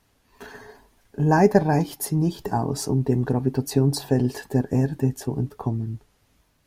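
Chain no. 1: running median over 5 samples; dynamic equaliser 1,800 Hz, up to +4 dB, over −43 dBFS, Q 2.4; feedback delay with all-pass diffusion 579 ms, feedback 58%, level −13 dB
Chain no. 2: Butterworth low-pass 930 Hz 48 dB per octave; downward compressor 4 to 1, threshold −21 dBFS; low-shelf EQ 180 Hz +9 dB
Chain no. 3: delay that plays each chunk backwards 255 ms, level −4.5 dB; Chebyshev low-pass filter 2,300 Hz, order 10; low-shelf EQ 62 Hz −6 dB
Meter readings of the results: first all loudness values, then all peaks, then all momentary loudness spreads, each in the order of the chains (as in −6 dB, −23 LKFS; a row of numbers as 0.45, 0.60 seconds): −23.0, −23.5, −23.0 LKFS; −3.0, −7.0, −4.0 dBFS; 15, 4, 14 LU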